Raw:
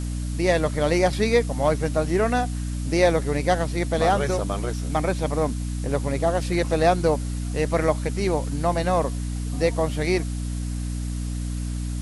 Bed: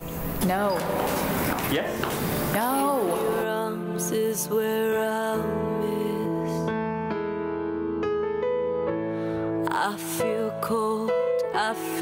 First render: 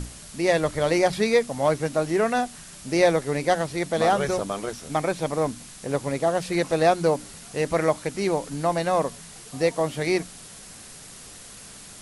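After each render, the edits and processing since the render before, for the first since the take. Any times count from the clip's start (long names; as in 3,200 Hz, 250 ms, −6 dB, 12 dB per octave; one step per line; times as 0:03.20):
mains-hum notches 60/120/180/240/300 Hz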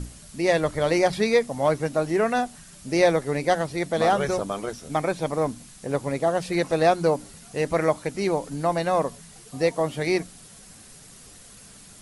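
broadband denoise 6 dB, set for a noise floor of −44 dBFS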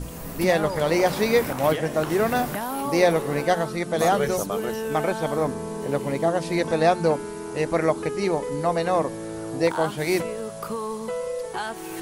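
mix in bed −5 dB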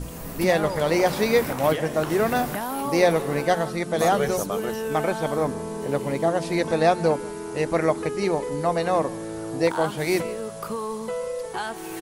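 single-tap delay 161 ms −21 dB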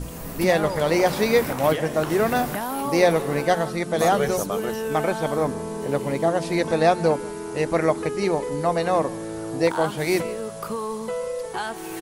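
level +1 dB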